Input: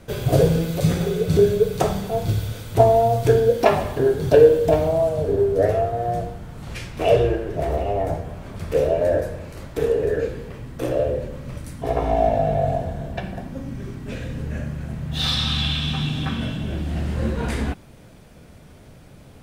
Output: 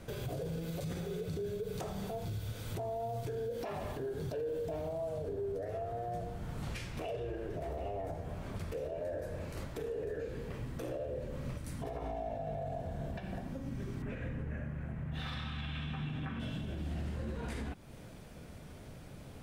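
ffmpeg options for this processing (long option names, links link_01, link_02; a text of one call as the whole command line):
ffmpeg -i in.wav -filter_complex "[0:a]asettb=1/sr,asplit=3[link_01][link_02][link_03];[link_01]atrim=end=14.024[link_04];[link_02]atrim=start=14.02:end=16.4,asetpts=PTS-STARTPTS,afade=type=in:duration=0.004:curve=qsin,afade=type=out:start_time=2.376:duration=0.004:curve=qsin,highshelf=frequency=3000:width_type=q:width=1.5:gain=-12[link_05];[link_03]atrim=start=16.396[link_06];[link_04][link_05]acrossfade=duration=0.004:curve1=hsin:curve2=qsin[link_07];[link_07][link_06]acrossfade=duration=0.004:curve1=qsin:curve2=hsin,alimiter=level_in=3dB:limit=-24dB:level=0:latency=1:release=257,volume=-3dB,volume=-4dB" out.wav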